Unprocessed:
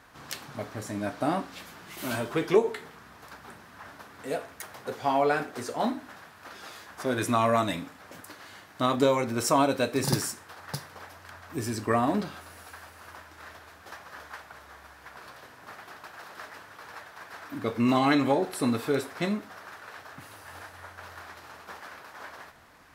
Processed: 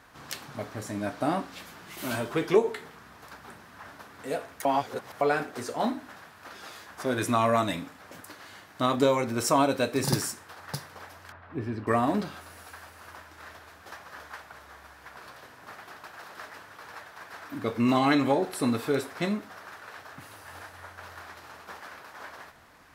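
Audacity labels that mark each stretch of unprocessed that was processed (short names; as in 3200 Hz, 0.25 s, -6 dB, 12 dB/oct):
4.650000	5.210000	reverse
11.320000	11.870000	air absorption 420 m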